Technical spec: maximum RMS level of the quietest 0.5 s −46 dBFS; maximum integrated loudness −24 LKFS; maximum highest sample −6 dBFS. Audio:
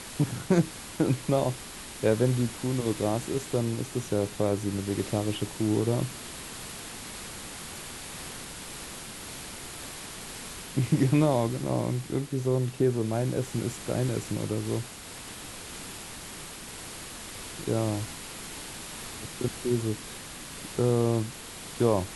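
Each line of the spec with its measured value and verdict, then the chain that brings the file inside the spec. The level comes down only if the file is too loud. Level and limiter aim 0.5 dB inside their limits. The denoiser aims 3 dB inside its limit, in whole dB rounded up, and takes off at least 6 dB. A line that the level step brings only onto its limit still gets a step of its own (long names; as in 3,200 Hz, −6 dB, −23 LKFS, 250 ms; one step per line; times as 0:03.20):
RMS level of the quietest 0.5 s −42 dBFS: out of spec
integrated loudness −30.5 LKFS: in spec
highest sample −10.5 dBFS: in spec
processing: broadband denoise 7 dB, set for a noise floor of −42 dBFS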